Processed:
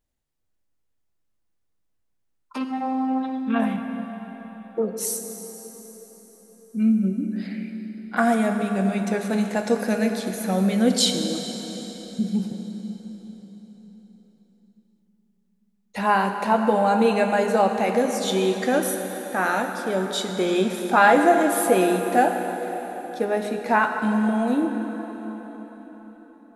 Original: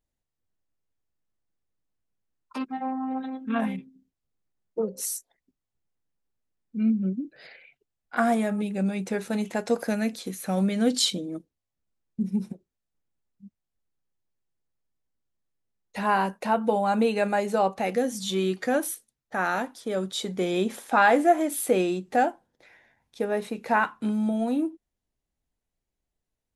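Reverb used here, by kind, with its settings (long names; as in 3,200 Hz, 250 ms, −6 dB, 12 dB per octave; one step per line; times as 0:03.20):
dense smooth reverb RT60 4.8 s, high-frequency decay 0.8×, DRR 4.5 dB
level +3 dB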